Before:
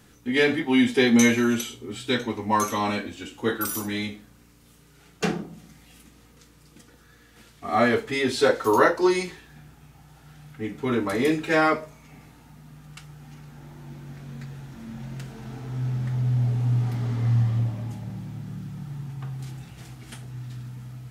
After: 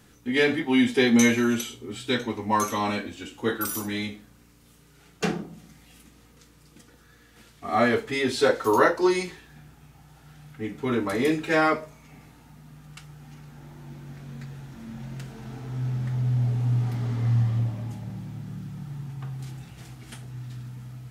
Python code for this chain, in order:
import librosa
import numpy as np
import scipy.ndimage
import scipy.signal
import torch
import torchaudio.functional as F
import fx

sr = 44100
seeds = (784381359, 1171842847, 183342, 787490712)

y = x * librosa.db_to_amplitude(-1.0)